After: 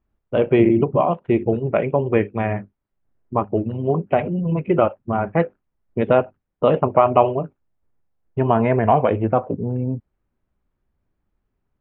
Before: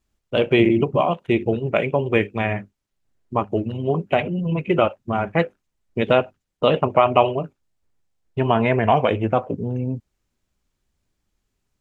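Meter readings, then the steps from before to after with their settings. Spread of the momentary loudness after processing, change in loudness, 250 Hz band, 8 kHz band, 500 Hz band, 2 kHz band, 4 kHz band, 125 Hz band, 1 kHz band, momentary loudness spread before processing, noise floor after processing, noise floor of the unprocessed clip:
10 LU, +1.0 dB, +1.5 dB, no reading, +1.5 dB, -5.0 dB, under -10 dB, +1.5 dB, +1.0 dB, 10 LU, -77 dBFS, -78 dBFS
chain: low-pass 1.5 kHz 12 dB/octave; trim +1.5 dB

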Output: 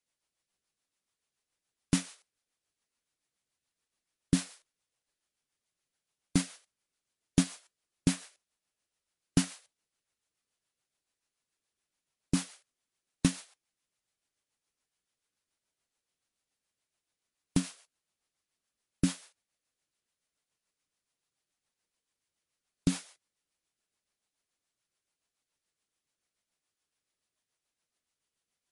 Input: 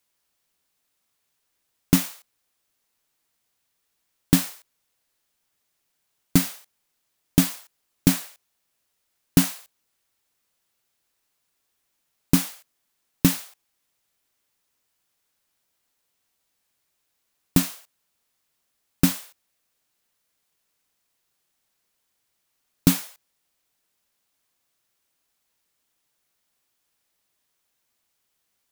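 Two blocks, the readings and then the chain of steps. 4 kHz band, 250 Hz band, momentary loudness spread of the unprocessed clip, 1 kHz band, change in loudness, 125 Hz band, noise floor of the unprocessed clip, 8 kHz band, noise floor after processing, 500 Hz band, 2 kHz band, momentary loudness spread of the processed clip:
-9.0 dB, -8.5 dB, 12 LU, -10.0 dB, -9.5 dB, -8.5 dB, -76 dBFS, -9.0 dB, under -85 dBFS, -9.0 dB, -9.0 dB, 15 LU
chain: rotary cabinet horn 7 Hz; trim -6.5 dB; MP3 48 kbps 32 kHz

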